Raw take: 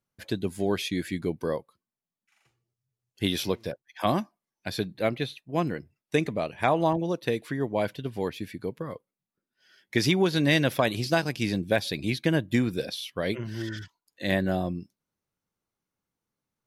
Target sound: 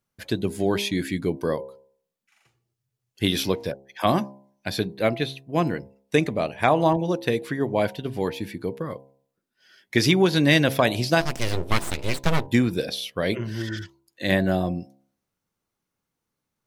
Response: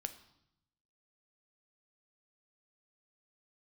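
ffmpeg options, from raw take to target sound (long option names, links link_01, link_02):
-filter_complex "[0:a]asplit=3[link_01][link_02][link_03];[link_01]afade=type=out:start_time=11.2:duration=0.02[link_04];[link_02]aeval=exprs='abs(val(0))':channel_layout=same,afade=type=in:start_time=11.2:duration=0.02,afade=type=out:start_time=12.46:duration=0.02[link_05];[link_03]afade=type=in:start_time=12.46:duration=0.02[link_06];[link_04][link_05][link_06]amix=inputs=3:normalize=0,bandreject=frequency=67.28:width_type=h:width=4,bandreject=frequency=134.56:width_type=h:width=4,bandreject=frequency=201.84:width_type=h:width=4,bandreject=frequency=269.12:width_type=h:width=4,bandreject=frequency=336.4:width_type=h:width=4,bandreject=frequency=403.68:width_type=h:width=4,bandreject=frequency=470.96:width_type=h:width=4,bandreject=frequency=538.24:width_type=h:width=4,bandreject=frequency=605.52:width_type=h:width=4,bandreject=frequency=672.8:width_type=h:width=4,bandreject=frequency=740.08:width_type=h:width=4,bandreject=frequency=807.36:width_type=h:width=4,bandreject=frequency=874.64:width_type=h:width=4,bandreject=frequency=941.92:width_type=h:width=4,bandreject=frequency=1009.2:width_type=h:width=4,volume=4.5dB"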